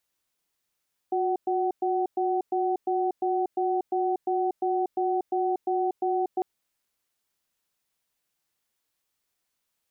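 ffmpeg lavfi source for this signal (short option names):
-f lavfi -i "aevalsrc='0.0531*(sin(2*PI*364*t)+sin(2*PI*752*t))*clip(min(mod(t,0.35),0.24-mod(t,0.35))/0.005,0,1)':d=5.3:s=44100"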